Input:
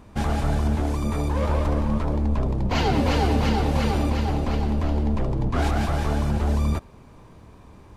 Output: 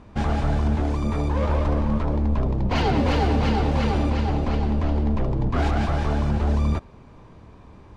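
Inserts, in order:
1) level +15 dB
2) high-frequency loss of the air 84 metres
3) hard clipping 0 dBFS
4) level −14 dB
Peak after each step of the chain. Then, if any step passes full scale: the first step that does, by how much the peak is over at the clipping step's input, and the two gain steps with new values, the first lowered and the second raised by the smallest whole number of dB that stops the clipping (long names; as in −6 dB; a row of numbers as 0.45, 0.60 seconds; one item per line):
+6.5, +6.0, 0.0, −14.0 dBFS
step 1, 6.0 dB
step 1 +9 dB, step 4 −8 dB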